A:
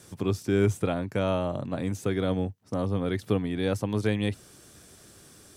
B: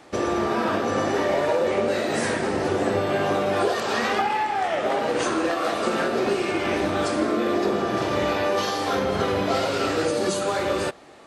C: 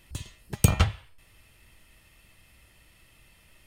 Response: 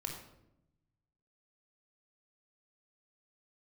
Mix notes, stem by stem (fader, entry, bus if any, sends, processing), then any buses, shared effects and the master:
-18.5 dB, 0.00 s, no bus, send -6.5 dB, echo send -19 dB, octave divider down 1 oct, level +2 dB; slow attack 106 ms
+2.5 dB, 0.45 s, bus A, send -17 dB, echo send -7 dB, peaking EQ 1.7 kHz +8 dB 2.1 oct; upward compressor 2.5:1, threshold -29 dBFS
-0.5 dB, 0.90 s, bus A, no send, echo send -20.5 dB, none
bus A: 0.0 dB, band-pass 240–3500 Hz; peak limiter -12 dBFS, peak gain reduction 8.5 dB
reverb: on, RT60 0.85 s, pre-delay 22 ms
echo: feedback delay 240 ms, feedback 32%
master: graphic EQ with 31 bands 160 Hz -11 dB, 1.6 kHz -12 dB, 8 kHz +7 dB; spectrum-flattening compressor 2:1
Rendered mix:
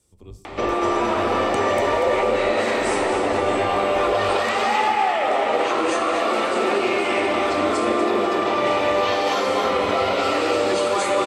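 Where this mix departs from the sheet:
stem A: missing slow attack 106 ms; stem B: send off; master: missing spectrum-flattening compressor 2:1

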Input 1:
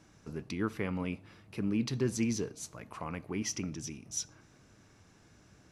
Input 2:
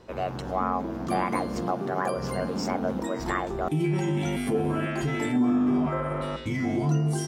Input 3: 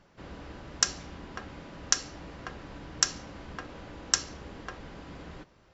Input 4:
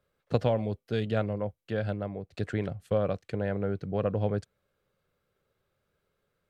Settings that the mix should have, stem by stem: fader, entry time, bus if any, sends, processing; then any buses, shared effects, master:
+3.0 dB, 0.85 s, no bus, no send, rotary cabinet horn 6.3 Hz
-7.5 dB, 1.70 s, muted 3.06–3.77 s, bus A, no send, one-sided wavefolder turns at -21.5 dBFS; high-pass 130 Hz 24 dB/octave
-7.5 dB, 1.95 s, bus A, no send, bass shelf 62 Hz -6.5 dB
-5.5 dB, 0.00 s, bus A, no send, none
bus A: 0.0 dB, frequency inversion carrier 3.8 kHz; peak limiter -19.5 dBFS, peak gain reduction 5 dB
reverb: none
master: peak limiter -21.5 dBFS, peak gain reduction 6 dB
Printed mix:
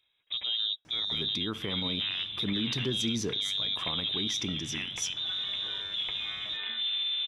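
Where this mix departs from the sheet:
stem 1: missing rotary cabinet horn 6.3 Hz; stem 2: entry 1.70 s -> 1.45 s; stem 4 -5.5 dB -> +2.0 dB

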